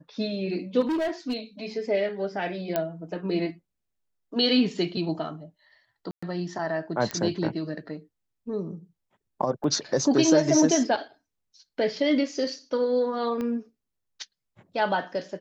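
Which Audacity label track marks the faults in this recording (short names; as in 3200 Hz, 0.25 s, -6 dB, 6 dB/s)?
0.800000	1.370000	clipped -23.5 dBFS
2.760000	2.760000	pop -12 dBFS
6.110000	6.220000	gap 0.115 s
7.110000	7.110000	pop -15 dBFS
9.640000	9.640000	gap 3.2 ms
13.410000	13.410000	pop -20 dBFS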